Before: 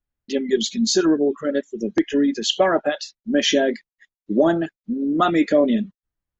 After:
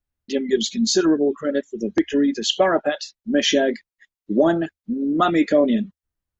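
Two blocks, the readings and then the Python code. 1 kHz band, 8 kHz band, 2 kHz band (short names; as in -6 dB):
0.0 dB, n/a, 0.0 dB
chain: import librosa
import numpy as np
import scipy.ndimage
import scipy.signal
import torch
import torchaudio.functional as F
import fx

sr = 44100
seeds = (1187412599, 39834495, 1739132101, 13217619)

y = fx.peak_eq(x, sr, hz=77.0, db=6.5, octaves=0.26)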